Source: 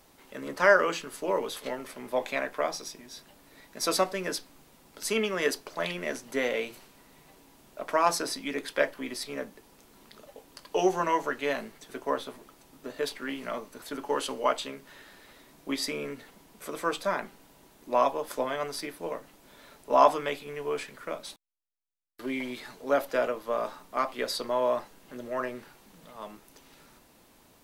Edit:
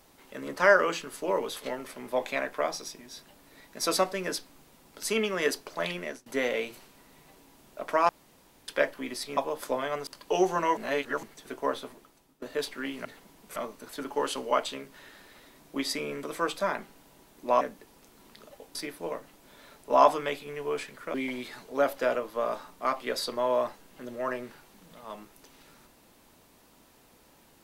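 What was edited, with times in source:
5.96–6.26 s: fade out, to -21.5 dB
8.09–8.68 s: room tone
9.37–10.51 s: swap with 18.05–18.75 s
11.21–11.67 s: reverse
12.26–12.86 s: fade out, to -17.5 dB
16.16–16.67 s: move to 13.49 s
21.14–22.26 s: delete

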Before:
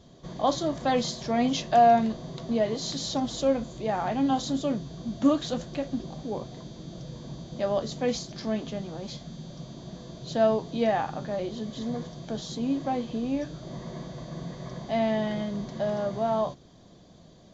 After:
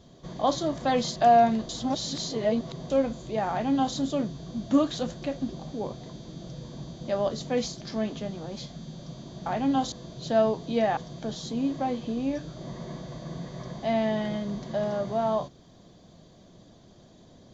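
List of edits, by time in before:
1.16–1.67 s: delete
2.20–3.41 s: reverse
4.01–4.47 s: copy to 9.97 s
11.02–12.03 s: delete

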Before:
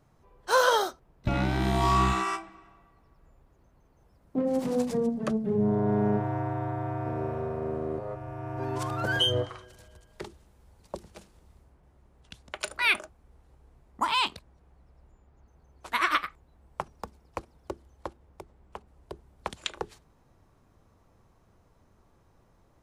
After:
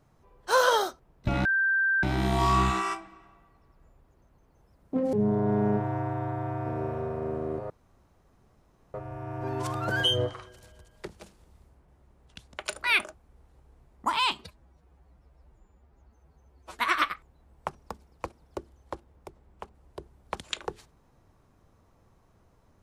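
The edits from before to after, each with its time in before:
1.45 s: add tone 1.57 kHz -21.5 dBFS 0.58 s
4.55–5.53 s: delete
8.10 s: insert room tone 1.24 s
10.24–11.03 s: delete
14.27–15.91 s: stretch 1.5×

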